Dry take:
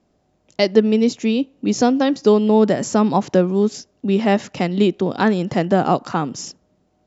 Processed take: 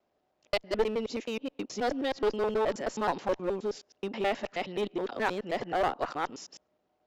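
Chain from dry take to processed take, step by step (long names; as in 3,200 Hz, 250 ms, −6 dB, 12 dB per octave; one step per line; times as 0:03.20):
reversed piece by piece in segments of 106 ms
three-way crossover with the lows and the highs turned down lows −15 dB, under 380 Hz, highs −14 dB, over 4,600 Hz
asymmetric clip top −20.5 dBFS
level −7 dB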